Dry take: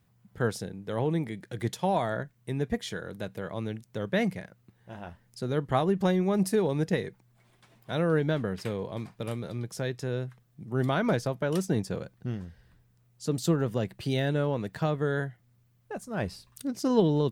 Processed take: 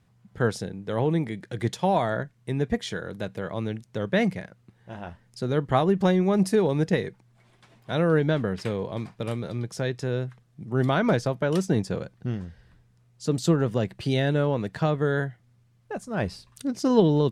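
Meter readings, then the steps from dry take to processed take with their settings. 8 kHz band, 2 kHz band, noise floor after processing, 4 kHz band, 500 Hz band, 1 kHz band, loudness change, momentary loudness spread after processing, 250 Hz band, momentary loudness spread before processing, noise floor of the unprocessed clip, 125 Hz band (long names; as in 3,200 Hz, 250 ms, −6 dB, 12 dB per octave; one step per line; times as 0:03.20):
+1.5 dB, +4.0 dB, −62 dBFS, +3.5 dB, +4.0 dB, +4.0 dB, +4.0 dB, 13 LU, +4.0 dB, 13 LU, −66 dBFS, +4.0 dB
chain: Bessel low-pass filter 8,100 Hz, order 2
level +4 dB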